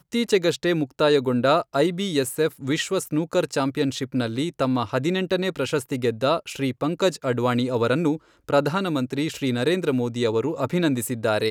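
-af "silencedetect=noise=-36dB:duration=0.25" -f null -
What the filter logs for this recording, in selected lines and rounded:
silence_start: 8.17
silence_end: 8.49 | silence_duration: 0.32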